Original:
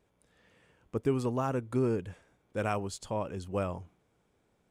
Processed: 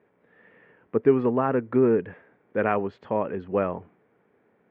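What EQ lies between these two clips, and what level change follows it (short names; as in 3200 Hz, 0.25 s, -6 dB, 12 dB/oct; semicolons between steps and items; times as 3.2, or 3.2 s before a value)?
speaker cabinet 170–2300 Hz, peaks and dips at 230 Hz +3 dB, 430 Hz +5 dB, 1800 Hz +6 dB; +7.0 dB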